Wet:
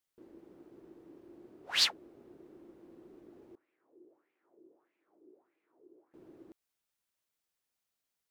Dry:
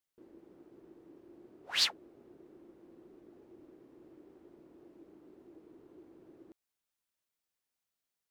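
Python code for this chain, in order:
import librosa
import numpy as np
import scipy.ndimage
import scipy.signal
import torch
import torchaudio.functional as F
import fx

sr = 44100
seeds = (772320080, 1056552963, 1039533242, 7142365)

y = fx.wah_lfo(x, sr, hz=1.6, low_hz=360.0, high_hz=2400.0, q=4.3, at=(3.55, 6.14))
y = y * 10.0 ** (1.5 / 20.0)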